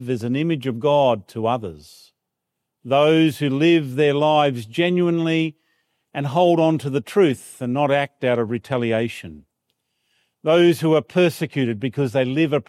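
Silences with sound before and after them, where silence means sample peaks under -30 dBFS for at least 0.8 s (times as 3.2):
1.71–2.86
9.32–10.45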